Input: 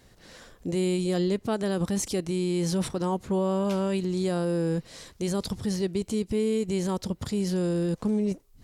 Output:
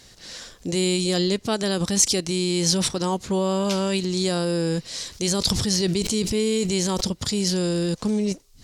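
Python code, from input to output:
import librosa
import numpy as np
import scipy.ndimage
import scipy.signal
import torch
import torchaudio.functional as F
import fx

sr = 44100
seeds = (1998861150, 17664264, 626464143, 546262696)

y = fx.peak_eq(x, sr, hz=5300.0, db=13.5, octaves=2.1)
y = fx.sustainer(y, sr, db_per_s=26.0, at=(5.09, 7.09))
y = y * librosa.db_to_amplitude(2.5)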